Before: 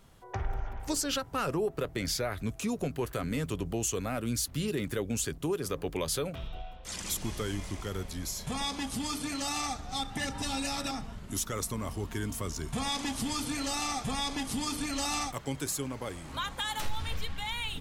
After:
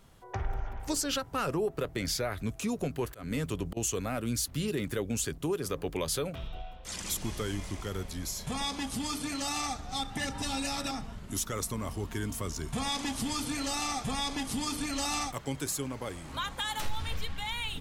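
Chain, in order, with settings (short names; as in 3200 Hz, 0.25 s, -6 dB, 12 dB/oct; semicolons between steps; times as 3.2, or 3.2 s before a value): 3.04–3.77 auto swell 0.186 s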